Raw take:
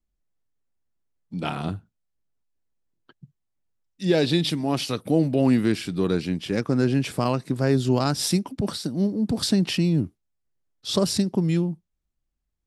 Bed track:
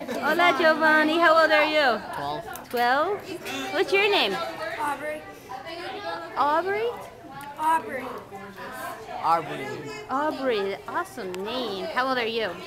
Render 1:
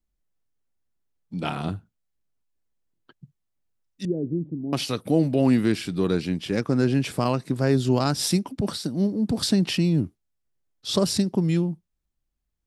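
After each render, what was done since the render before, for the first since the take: 4.05–4.73 ladder low-pass 440 Hz, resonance 25%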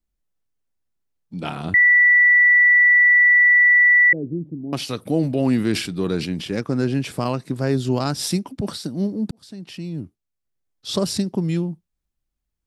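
1.74–4.13 bleep 1960 Hz -10 dBFS; 4.99–6.48 sustainer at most 79 dB/s; 9.31–10.89 fade in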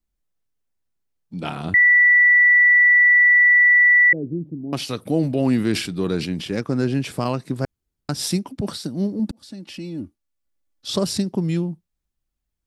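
7.65–8.09 room tone; 9.19–10.9 comb 3.5 ms, depth 62%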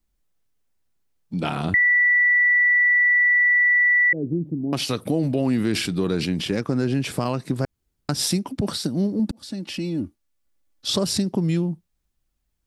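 in parallel at -1.5 dB: limiter -16 dBFS, peak gain reduction 7.5 dB; on the sum: compressor 2:1, threshold -22 dBFS, peak gain reduction 7 dB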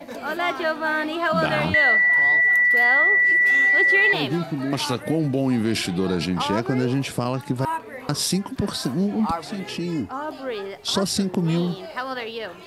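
add bed track -4.5 dB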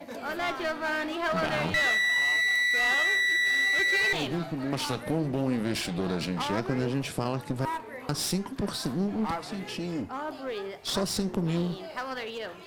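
one-sided clip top -27.5 dBFS; flange 0.7 Hz, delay 9.5 ms, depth 9.7 ms, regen -86%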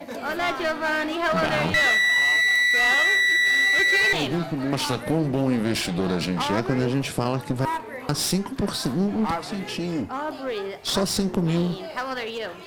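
gain +5.5 dB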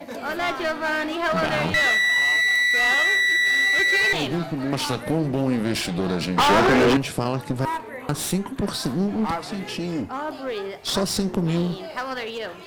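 6.38–6.97 overdrive pedal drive 34 dB, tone 2300 Hz, clips at -9 dBFS; 7.89–8.63 bell 5100 Hz -13.5 dB 0.29 oct

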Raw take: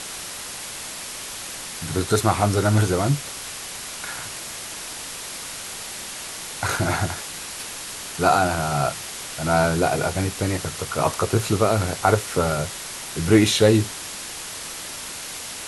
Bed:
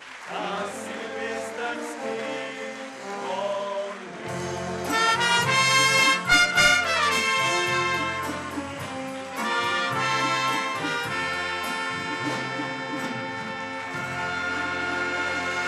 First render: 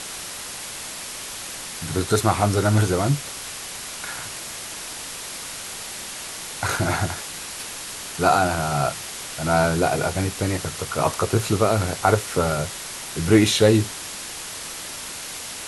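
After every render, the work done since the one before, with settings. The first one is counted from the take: nothing audible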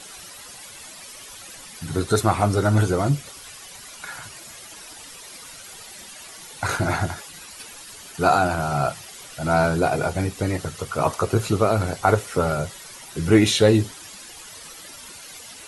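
denoiser 12 dB, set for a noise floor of -34 dBFS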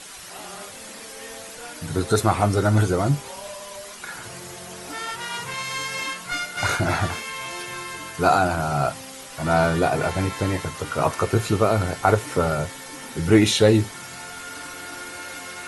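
add bed -10 dB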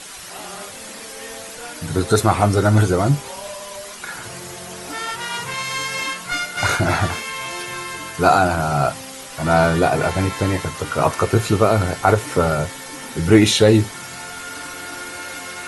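gain +4 dB; limiter -1 dBFS, peak gain reduction 2 dB

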